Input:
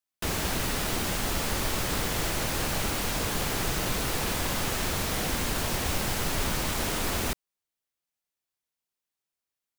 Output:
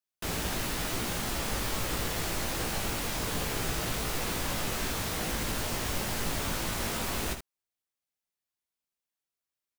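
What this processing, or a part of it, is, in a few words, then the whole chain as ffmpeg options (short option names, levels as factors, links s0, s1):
slapback doubling: -filter_complex "[0:a]asplit=3[s0][s1][s2];[s1]adelay=18,volume=0.596[s3];[s2]adelay=76,volume=0.398[s4];[s0][s3][s4]amix=inputs=3:normalize=0,volume=0.562"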